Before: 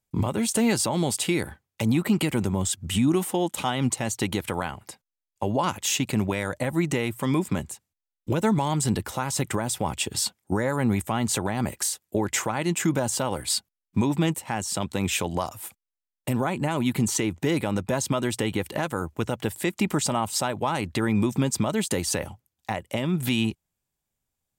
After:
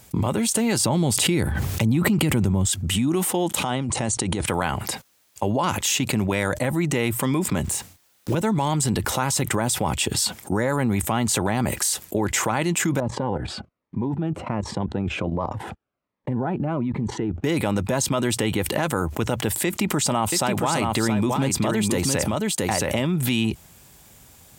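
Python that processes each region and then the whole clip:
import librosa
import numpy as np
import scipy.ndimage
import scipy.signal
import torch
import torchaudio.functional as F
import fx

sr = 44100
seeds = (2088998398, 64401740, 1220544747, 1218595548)

y = fx.chain(x, sr, fx.low_shelf(hz=230.0, db=11.0),
    fx.pre_swell(db_per_s=52.0), at=(0.8, 2.66))
y = fx.chain(y, sr, fx.peak_eq(hz=2900.0, db=-5.5, octaves=2.7),
    fx.over_compress(threshold_db=-34.0, ratio=-1.0),
    fx.brickwall_lowpass(high_hz=10000.0), at=(3.63, 4.46))
y = fx.chain(y, sr, fx.block_float(bits=5),
    fx.doubler(ms=33.0, db=-3.0), at=(7.64, 8.35))
y = fx.chain(y, sr, fx.lowpass(hz=1200.0, slope=12),
    fx.level_steps(step_db=16),
    fx.notch_cascade(direction='falling', hz=1.3), at=(13.0, 17.44))
y = fx.chain(y, sr, fx.quant_float(bits=8),
    fx.echo_single(ms=672, db=-5.5), at=(19.65, 23.22))
y = scipy.signal.sosfilt(scipy.signal.butter(2, 45.0, 'highpass', fs=sr, output='sos'), y)
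y = fx.env_flatten(y, sr, amount_pct=70)
y = y * 10.0 ** (-6.5 / 20.0)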